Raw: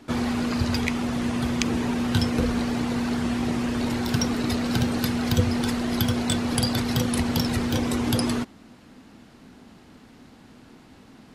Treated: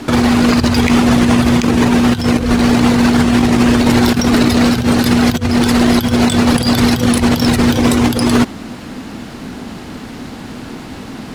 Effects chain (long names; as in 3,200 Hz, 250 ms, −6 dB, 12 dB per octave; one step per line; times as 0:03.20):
compressor whose output falls as the input rises −27 dBFS, ratio −0.5
boost into a limiter +18.5 dB
level −1 dB
IMA ADPCM 176 kbit/s 44,100 Hz